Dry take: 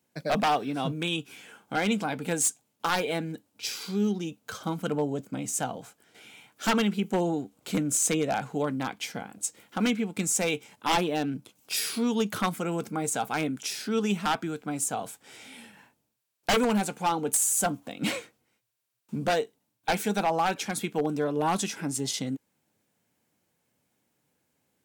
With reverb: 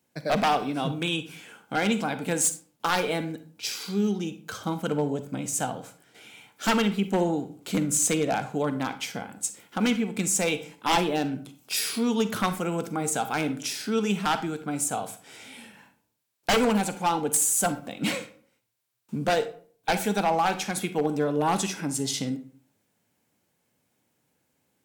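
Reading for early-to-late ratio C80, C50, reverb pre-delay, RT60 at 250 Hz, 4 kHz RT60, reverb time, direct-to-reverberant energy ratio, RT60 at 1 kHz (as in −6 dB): 17.5 dB, 12.5 dB, 39 ms, 0.55 s, 0.30 s, 0.50 s, 10.5 dB, 0.45 s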